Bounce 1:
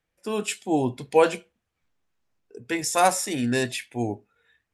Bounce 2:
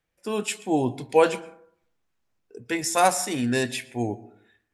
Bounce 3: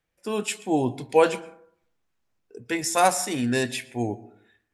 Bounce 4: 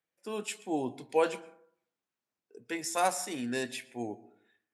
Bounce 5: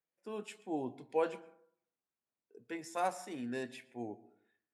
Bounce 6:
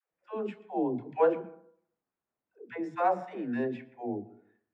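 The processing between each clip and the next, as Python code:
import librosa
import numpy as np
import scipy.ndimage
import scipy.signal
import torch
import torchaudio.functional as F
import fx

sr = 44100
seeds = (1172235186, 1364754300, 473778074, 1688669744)

y1 = fx.rev_plate(x, sr, seeds[0], rt60_s=0.64, hf_ratio=0.35, predelay_ms=105, drr_db=19.0)
y2 = y1
y3 = scipy.signal.sosfilt(scipy.signal.butter(2, 190.0, 'highpass', fs=sr, output='sos'), y2)
y3 = F.gain(torch.from_numpy(y3), -8.5).numpy()
y4 = fx.high_shelf(y3, sr, hz=3000.0, db=-11.5)
y4 = F.gain(torch.from_numpy(y4), -5.0).numpy()
y5 = scipy.signal.sosfilt(scipy.signal.butter(2, 1600.0, 'lowpass', fs=sr, output='sos'), y4)
y5 = fx.dispersion(y5, sr, late='lows', ms=121.0, hz=420.0)
y5 = F.gain(torch.from_numpy(y5), 8.0).numpy()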